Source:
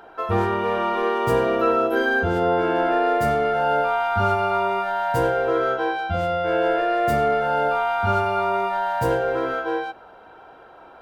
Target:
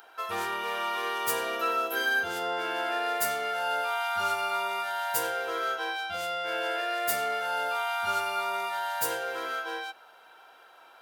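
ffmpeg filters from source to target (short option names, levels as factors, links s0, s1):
-af "aderivative,volume=2.82"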